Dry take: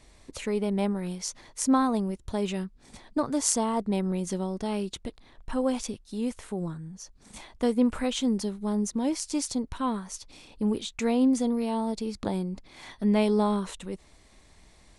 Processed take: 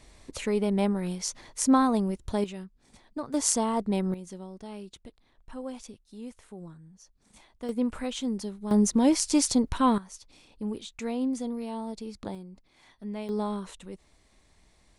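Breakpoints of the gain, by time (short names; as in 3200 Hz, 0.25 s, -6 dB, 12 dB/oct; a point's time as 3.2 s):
+1.5 dB
from 2.44 s -8 dB
from 3.34 s 0 dB
from 4.14 s -11 dB
from 7.69 s -4.5 dB
from 8.71 s +6 dB
from 9.98 s -6.5 dB
from 12.35 s -13 dB
from 13.29 s -6 dB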